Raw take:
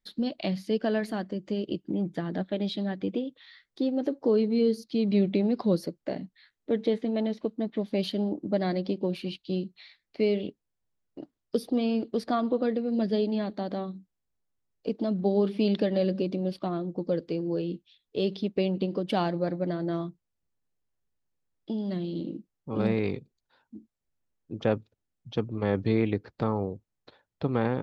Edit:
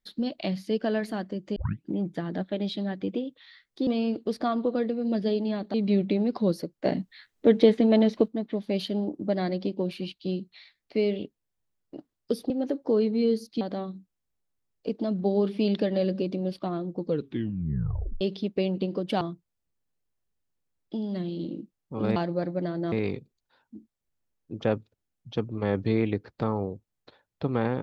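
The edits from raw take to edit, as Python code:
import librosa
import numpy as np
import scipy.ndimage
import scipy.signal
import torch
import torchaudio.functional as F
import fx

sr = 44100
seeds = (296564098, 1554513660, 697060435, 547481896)

y = fx.edit(x, sr, fx.tape_start(start_s=1.56, length_s=0.29),
    fx.swap(start_s=3.87, length_s=1.11, other_s=11.74, other_length_s=1.87),
    fx.clip_gain(start_s=6.09, length_s=1.43, db=8.0),
    fx.tape_stop(start_s=17.04, length_s=1.17),
    fx.move(start_s=19.21, length_s=0.76, to_s=22.92), tone=tone)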